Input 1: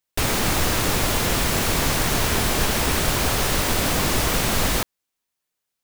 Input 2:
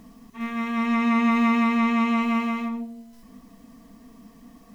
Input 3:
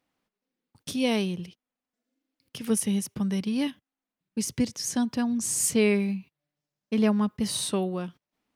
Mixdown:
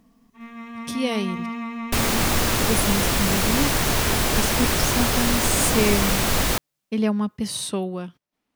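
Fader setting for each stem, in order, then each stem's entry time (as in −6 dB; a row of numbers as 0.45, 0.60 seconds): 0.0, −10.0, +1.0 decibels; 1.75, 0.00, 0.00 seconds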